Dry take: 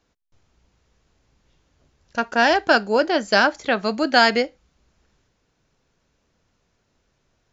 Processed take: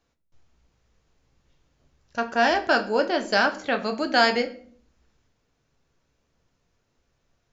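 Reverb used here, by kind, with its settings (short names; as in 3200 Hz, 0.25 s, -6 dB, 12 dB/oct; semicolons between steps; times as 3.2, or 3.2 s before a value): shoebox room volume 54 m³, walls mixed, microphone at 0.3 m; gain -5 dB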